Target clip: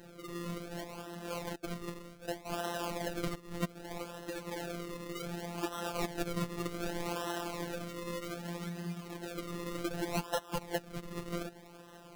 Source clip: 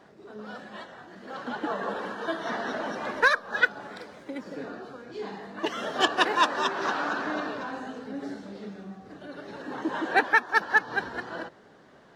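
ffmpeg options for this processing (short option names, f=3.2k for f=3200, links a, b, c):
-filter_complex "[0:a]asettb=1/sr,asplit=3[a][b][c];[a]atrim=end=1.554[d];[b]atrim=start=1.55:end=2.52,asetpts=PTS-STARTPTS,afade=t=in:d=0.004:c=qsin,afade=t=out:st=0.966:d=0.004:c=qsin,agate=range=-33dB:threshold=-23dB:ratio=3:detection=peak[e];[c]atrim=start=2.516[f];[d][e]acrossfade=d=0.004:c1=hsin:c2=qsin[g];[g][f]acrossfade=d=0.004:c1=qsin:c2=hsin,asettb=1/sr,asplit=3[h][i][j];[h]atrim=end=3.344[k];[i]atrim=start=3.34:end=3.82,asetpts=PTS-STARTPTS,afade=t=in:d=0.004:c=qsin,afade=t=out:st=0.476:d=0.004:c=qsin,lowpass=f=1.6k:w=0.5412,lowpass=f=1.6k:w=1.3066[l];[j]atrim=start=3.816[m];[k][l]acrossfade=d=0.004:c1=hsin:c2=qsin[n];[n][m]acrossfade=d=0.004:c1=qsin:c2=hsin,acompressor=threshold=-38dB:ratio=3,acrusher=samples=38:mix=1:aa=0.000001:lfo=1:lforange=38:lforate=0.65,afftfilt=real='hypot(re,im)*cos(PI*b)':imag='0':win_size=1024:overlap=0.75,volume=5dB"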